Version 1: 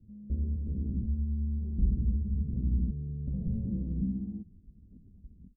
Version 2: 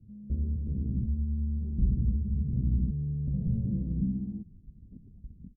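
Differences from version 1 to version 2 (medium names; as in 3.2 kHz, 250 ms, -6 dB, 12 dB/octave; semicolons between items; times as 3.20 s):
second sound +5.0 dB; master: add peaking EQ 130 Hz +8 dB 0.59 oct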